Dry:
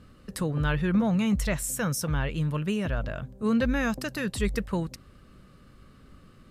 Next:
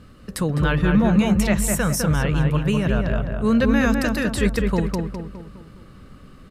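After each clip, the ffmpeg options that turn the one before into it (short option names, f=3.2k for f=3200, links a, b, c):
-filter_complex "[0:a]asplit=2[a][b];[b]adelay=206,lowpass=f=1.9k:p=1,volume=-3dB,asplit=2[c][d];[d]adelay=206,lowpass=f=1.9k:p=1,volume=0.48,asplit=2[e][f];[f]adelay=206,lowpass=f=1.9k:p=1,volume=0.48,asplit=2[g][h];[h]adelay=206,lowpass=f=1.9k:p=1,volume=0.48,asplit=2[i][j];[j]adelay=206,lowpass=f=1.9k:p=1,volume=0.48,asplit=2[k][l];[l]adelay=206,lowpass=f=1.9k:p=1,volume=0.48[m];[a][c][e][g][i][k][m]amix=inputs=7:normalize=0,volume=6dB"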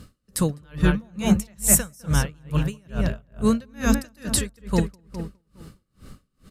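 -af "bass=f=250:g=3,treble=f=4k:g=12,aeval=exprs='val(0)*pow(10,-35*(0.5-0.5*cos(2*PI*2.3*n/s))/20)':c=same"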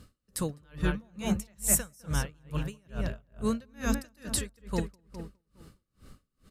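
-af "equalizer=f=170:t=o:w=0.9:g=-3.5,volume=-7.5dB"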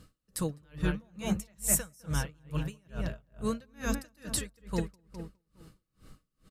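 -af "aecho=1:1:6.3:0.31,volume=-2dB"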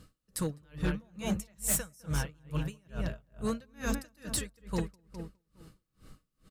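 -af "asoftclip=type=hard:threshold=-24dB"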